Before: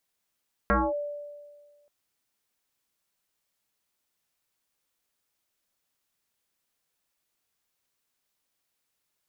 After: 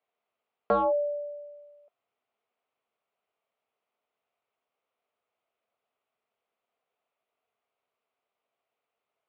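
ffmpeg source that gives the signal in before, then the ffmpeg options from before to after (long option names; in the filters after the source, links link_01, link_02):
-f lavfi -i "aevalsrc='0.126*pow(10,-3*t/1.62)*sin(2*PI*584*t+4.3*clip(1-t/0.23,0,1)*sin(2*PI*0.45*584*t))':duration=1.18:sample_rate=44100"
-filter_complex "[0:a]acrossover=split=780[link_01][link_02];[link_02]asoftclip=type=hard:threshold=-27.5dB[link_03];[link_01][link_03]amix=inputs=2:normalize=0,highpass=160,equalizer=frequency=170:width_type=q:width=4:gain=-9,equalizer=frequency=310:width_type=q:width=4:gain=-7,equalizer=frequency=440:width_type=q:width=4:gain=7,equalizer=frequency=680:width_type=q:width=4:gain=10,equalizer=frequency=1200:width_type=q:width=4:gain=4,equalizer=frequency=1700:width_type=q:width=4:gain=-8,lowpass=frequency=2800:width=0.5412,lowpass=frequency=2800:width=1.3066"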